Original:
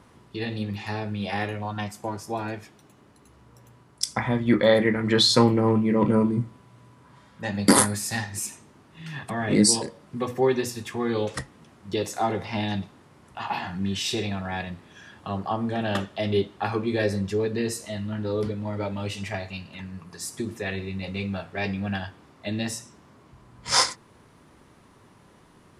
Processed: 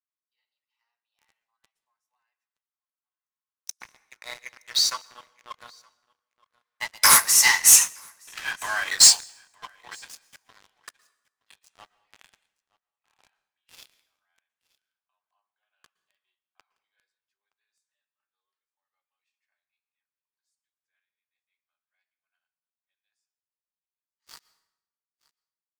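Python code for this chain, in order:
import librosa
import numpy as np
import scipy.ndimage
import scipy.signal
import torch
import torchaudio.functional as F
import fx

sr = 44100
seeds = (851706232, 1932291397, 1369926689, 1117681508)

p1 = fx.doppler_pass(x, sr, speed_mps=29, closest_m=5.9, pass_at_s=7.91)
p2 = scipy.signal.sosfilt(scipy.signal.butter(4, 1000.0, 'highpass', fs=sr, output='sos'), p1)
p3 = fx.leveller(p2, sr, passes=5)
p4 = fx.dynamic_eq(p3, sr, hz=6200.0, q=3.3, threshold_db=-44.0, ratio=4.0, max_db=7)
p5 = p4 + fx.echo_single(p4, sr, ms=920, db=-23.5, dry=0)
p6 = fx.rev_plate(p5, sr, seeds[0], rt60_s=0.89, hf_ratio=0.8, predelay_ms=105, drr_db=18.5)
p7 = fx.upward_expand(p6, sr, threshold_db=-39.0, expansion=1.5)
y = p7 * 10.0 ** (7.5 / 20.0)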